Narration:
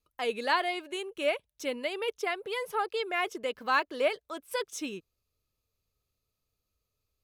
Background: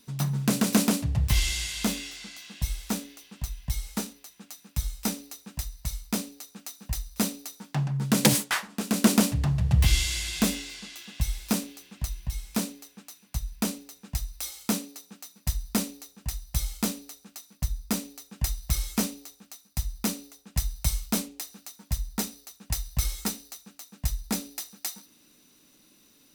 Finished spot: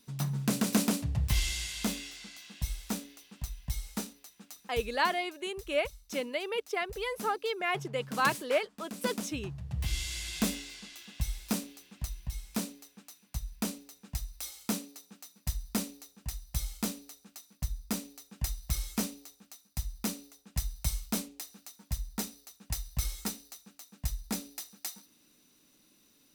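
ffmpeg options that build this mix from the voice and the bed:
-filter_complex "[0:a]adelay=4500,volume=-1dB[a];[1:a]volume=6dB,afade=t=out:st=4.61:d=0.26:silence=0.266073,afade=t=in:st=9.68:d=0.68:silence=0.281838[b];[a][b]amix=inputs=2:normalize=0"

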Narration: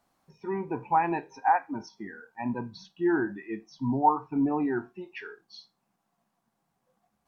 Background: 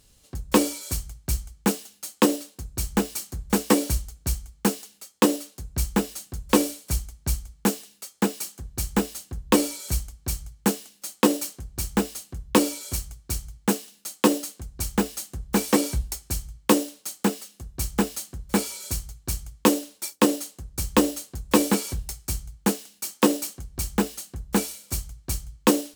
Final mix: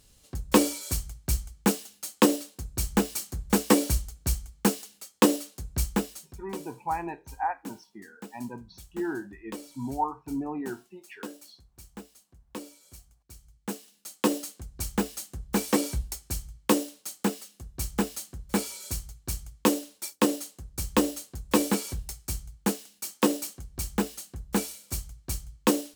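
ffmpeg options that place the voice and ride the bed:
-filter_complex "[0:a]adelay=5950,volume=-6dB[a];[1:a]volume=15.5dB,afade=t=out:st=5.7:d=0.84:silence=0.105925,afade=t=in:st=13.37:d=1.09:silence=0.149624[b];[a][b]amix=inputs=2:normalize=0"

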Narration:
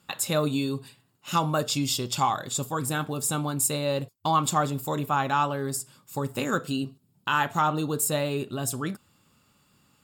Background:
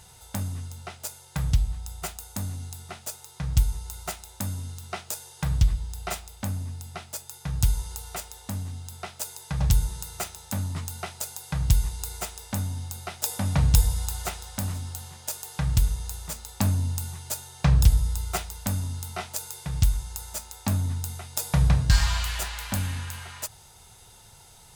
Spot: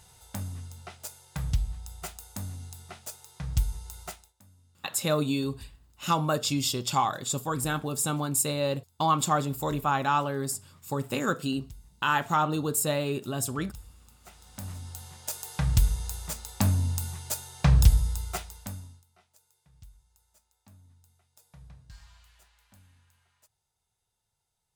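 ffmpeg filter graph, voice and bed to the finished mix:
-filter_complex "[0:a]adelay=4750,volume=-1dB[a];[1:a]volume=21.5dB,afade=t=out:st=4.03:d=0.3:silence=0.0794328,afade=t=in:st=14.2:d=1.33:silence=0.0473151,afade=t=out:st=17.86:d=1.18:silence=0.0316228[b];[a][b]amix=inputs=2:normalize=0"

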